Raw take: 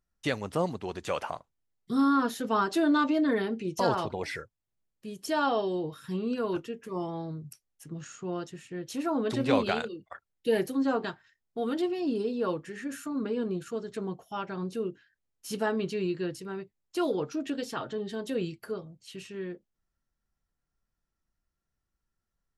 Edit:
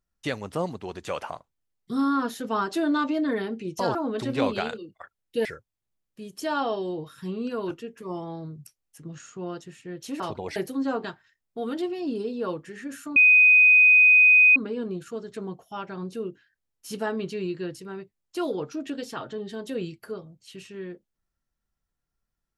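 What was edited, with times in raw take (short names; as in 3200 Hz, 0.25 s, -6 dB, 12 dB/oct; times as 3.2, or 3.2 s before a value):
3.95–4.31 swap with 9.06–10.56
13.16 add tone 2500 Hz -12 dBFS 1.40 s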